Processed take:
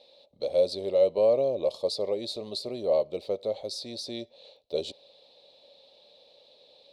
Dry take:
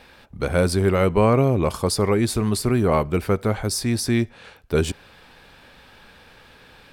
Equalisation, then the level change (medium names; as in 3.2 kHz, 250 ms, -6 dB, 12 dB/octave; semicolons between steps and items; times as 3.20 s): two resonant band-passes 1.5 kHz, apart 2.8 oct; +3.0 dB